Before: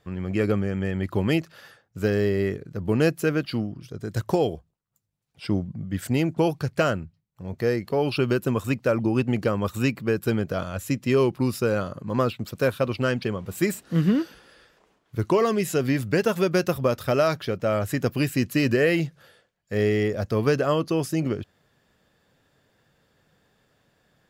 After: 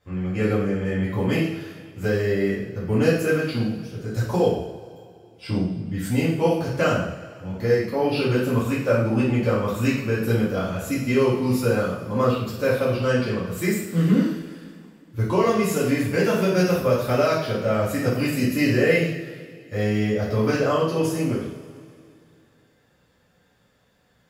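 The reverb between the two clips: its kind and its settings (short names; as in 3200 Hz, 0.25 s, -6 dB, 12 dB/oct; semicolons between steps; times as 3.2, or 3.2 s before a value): two-slope reverb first 0.63 s, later 2.6 s, from -17 dB, DRR -10 dB; gain -8 dB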